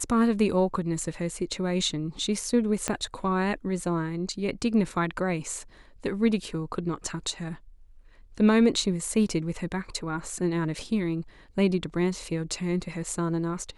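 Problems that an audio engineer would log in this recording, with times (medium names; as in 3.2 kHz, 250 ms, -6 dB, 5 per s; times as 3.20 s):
2.88 s: pop -12 dBFS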